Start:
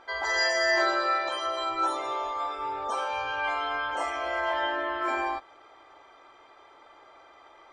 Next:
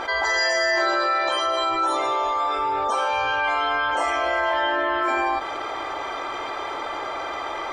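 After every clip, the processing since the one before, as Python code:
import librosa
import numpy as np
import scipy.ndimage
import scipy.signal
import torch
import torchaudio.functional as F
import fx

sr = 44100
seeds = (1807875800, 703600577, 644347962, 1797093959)

y = fx.env_flatten(x, sr, amount_pct=70)
y = F.gain(torch.from_numpy(y), 2.0).numpy()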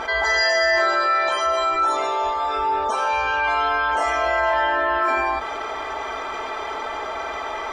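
y = fx.peak_eq(x, sr, hz=61.0, db=9.0, octaves=0.82)
y = y + 0.49 * np.pad(y, (int(4.6 * sr / 1000.0), 0))[:len(y)]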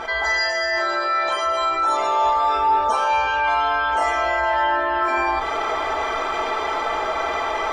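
y = fx.rider(x, sr, range_db=4, speed_s=0.5)
y = fx.room_shoebox(y, sr, seeds[0], volume_m3=200.0, walls='furnished', distance_m=0.71)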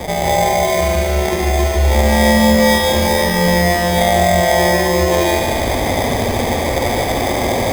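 y = fx.sample_hold(x, sr, seeds[1], rate_hz=1400.0, jitter_pct=0)
y = fx.echo_heads(y, sr, ms=73, heads='first and second', feedback_pct=72, wet_db=-8.5)
y = F.gain(torch.from_numpy(y), 4.5).numpy()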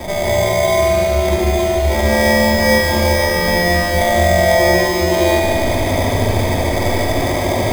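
y = fx.room_shoebox(x, sr, seeds[2], volume_m3=2300.0, walls='furnished', distance_m=2.8)
y = F.gain(torch.from_numpy(y), -3.5).numpy()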